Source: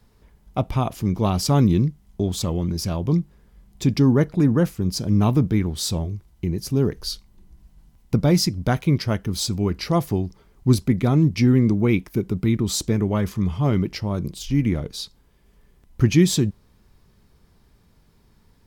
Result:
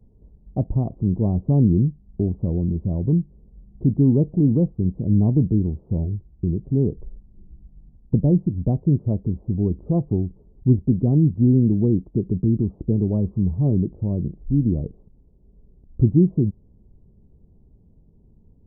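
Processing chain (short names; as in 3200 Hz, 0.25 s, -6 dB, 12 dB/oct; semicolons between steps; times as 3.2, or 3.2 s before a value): Gaussian blur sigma 16 samples; in parallel at -3 dB: compressor, threshold -27 dBFS, peak gain reduction 14 dB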